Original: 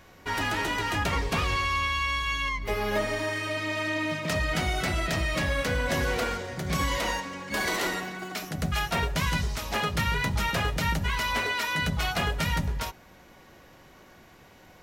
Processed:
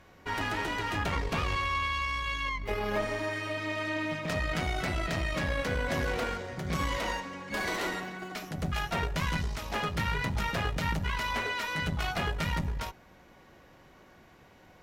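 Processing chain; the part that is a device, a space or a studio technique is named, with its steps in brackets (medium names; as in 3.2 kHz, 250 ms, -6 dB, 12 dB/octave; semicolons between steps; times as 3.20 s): tube preamp driven hard (valve stage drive 20 dB, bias 0.6; treble shelf 4.3 kHz -7 dB)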